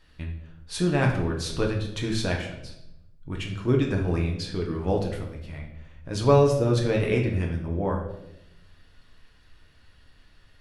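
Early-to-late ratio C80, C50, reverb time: 9.0 dB, 6.0 dB, 0.85 s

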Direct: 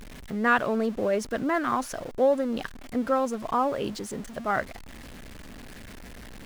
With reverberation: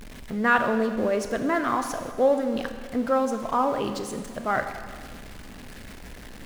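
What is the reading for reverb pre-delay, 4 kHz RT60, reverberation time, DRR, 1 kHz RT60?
17 ms, 1.6 s, 1.8 s, 7.0 dB, 1.8 s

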